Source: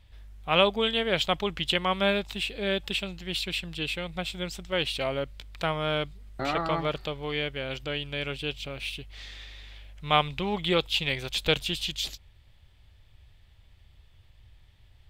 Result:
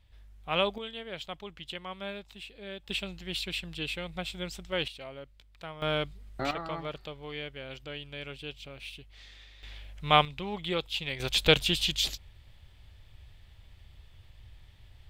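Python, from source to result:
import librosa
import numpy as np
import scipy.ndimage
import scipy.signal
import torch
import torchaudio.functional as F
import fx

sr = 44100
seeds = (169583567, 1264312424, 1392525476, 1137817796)

y = fx.gain(x, sr, db=fx.steps((0.0, -6.0), (0.78, -14.0), (2.89, -3.5), (4.88, -14.0), (5.82, -1.5), (6.51, -8.5), (9.63, 1.0), (10.25, -6.5), (11.2, 3.0)))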